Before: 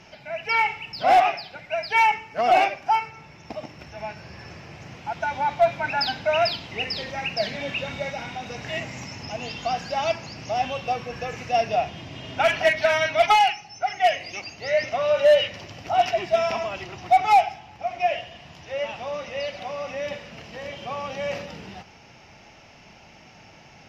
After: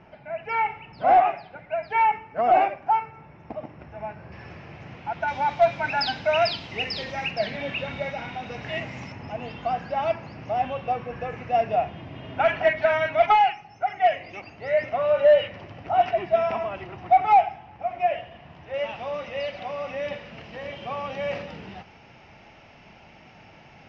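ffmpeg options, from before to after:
-af "asetnsamples=n=441:p=0,asendcmd='4.32 lowpass f 2800;5.28 lowpass f 5600;7.31 lowpass f 3200;9.12 lowpass f 1900;18.74 lowpass f 3300',lowpass=1500"

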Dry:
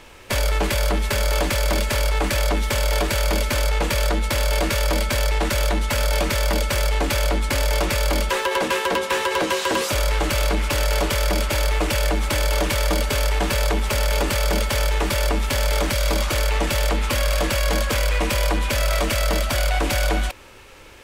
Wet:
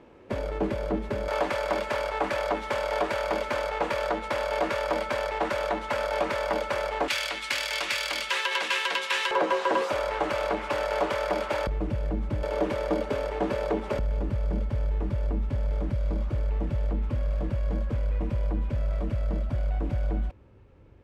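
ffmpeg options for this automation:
-af "asetnsamples=n=441:p=0,asendcmd='1.28 bandpass f 800;7.08 bandpass f 2800;9.31 bandpass f 750;11.67 bandpass f 140;12.43 bandpass f 400;13.99 bandpass f 110',bandpass=f=290:t=q:w=0.89:csg=0"

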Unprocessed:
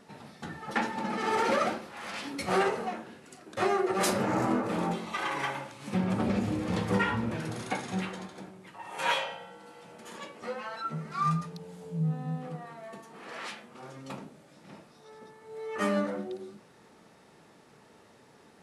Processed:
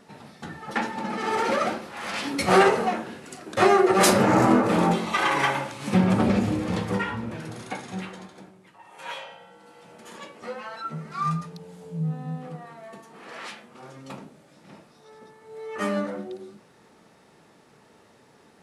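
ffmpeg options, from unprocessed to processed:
-af "volume=10.6,afade=t=in:st=1.59:d=0.87:silence=0.446684,afade=t=out:st=5.92:d=1.13:silence=0.298538,afade=t=out:st=8.32:d=0.72:silence=0.375837,afade=t=in:st=9.04:d=0.91:silence=0.281838"

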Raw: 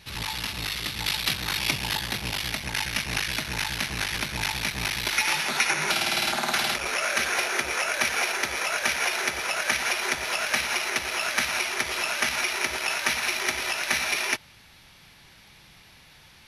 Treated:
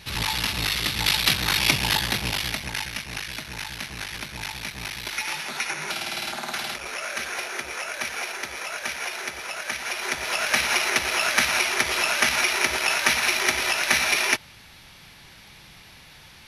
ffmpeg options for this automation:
-af "volume=5.62,afade=t=out:st=1.99:d=1.02:silence=0.298538,afade=t=in:st=9.82:d=0.91:silence=0.334965"

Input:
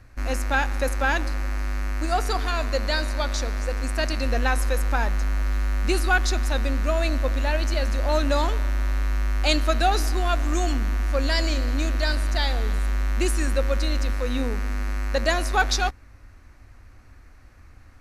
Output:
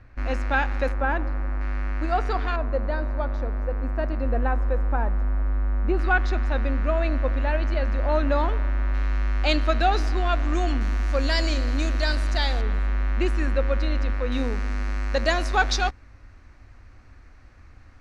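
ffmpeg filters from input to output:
-af "asetnsamples=n=441:p=0,asendcmd='0.92 lowpass f 1400;1.61 lowpass f 2500;2.56 lowpass f 1100;5.99 lowpass f 2200;8.94 lowpass f 3700;10.81 lowpass f 6900;12.61 lowpass f 2800;14.32 lowpass f 5900',lowpass=3100"

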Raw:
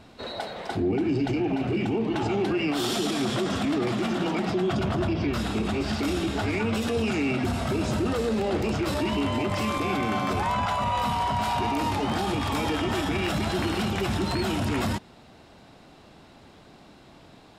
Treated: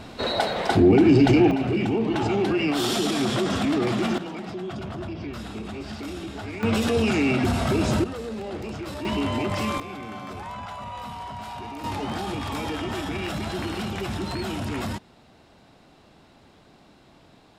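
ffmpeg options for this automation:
-af "asetnsamples=n=441:p=0,asendcmd='1.51 volume volume 2.5dB;4.18 volume volume -7.5dB;6.63 volume volume 4dB;8.04 volume volume -7dB;9.05 volume volume 0.5dB;9.8 volume volume -10dB;11.84 volume volume -3dB',volume=2.99"

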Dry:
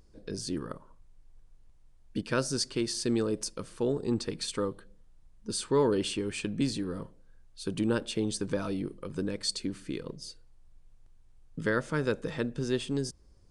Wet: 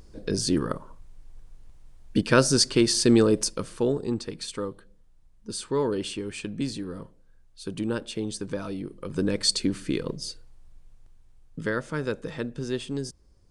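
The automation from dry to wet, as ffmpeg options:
-af "volume=8.91,afade=t=out:st=3.24:d=0.96:silence=0.298538,afade=t=in:st=8.89:d=0.46:silence=0.354813,afade=t=out:st=10.21:d=1.55:silence=0.375837"

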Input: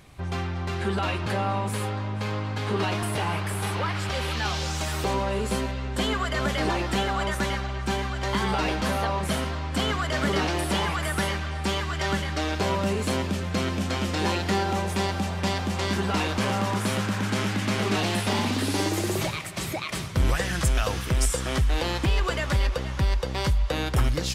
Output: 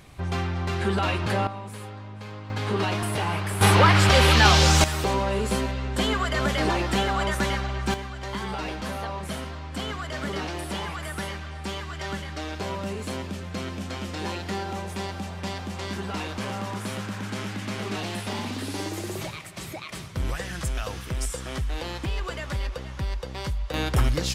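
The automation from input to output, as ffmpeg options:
-af "asetnsamples=n=441:p=0,asendcmd='1.47 volume volume -9.5dB;2.5 volume volume 0.5dB;3.61 volume volume 11.5dB;4.84 volume volume 1.5dB;7.94 volume volume -6dB;23.74 volume volume 1dB',volume=1.26"

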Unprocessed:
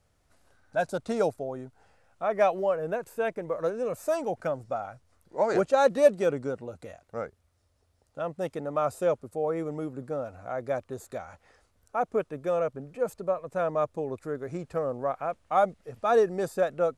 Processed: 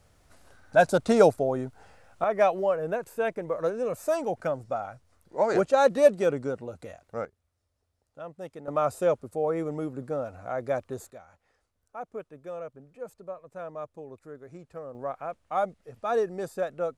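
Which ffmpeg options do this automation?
-af "asetnsamples=n=441:p=0,asendcmd='2.24 volume volume 1dB;7.25 volume volume -8dB;8.68 volume volume 1.5dB;11.1 volume volume -10.5dB;14.95 volume volume -4dB',volume=2.51"

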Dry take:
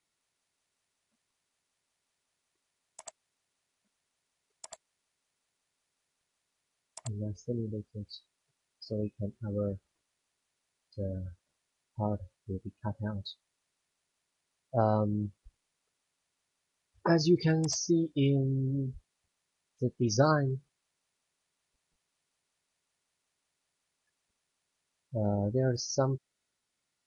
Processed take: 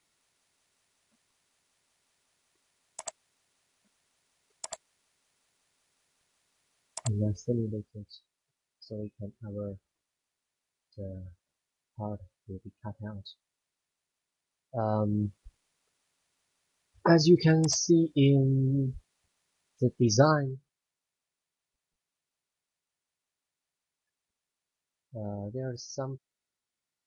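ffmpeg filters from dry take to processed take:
-af "volume=6.68,afade=t=out:st=7.26:d=0.79:silence=0.251189,afade=t=in:st=14.81:d=0.46:silence=0.354813,afade=t=out:st=20.16:d=0.41:silence=0.266073"

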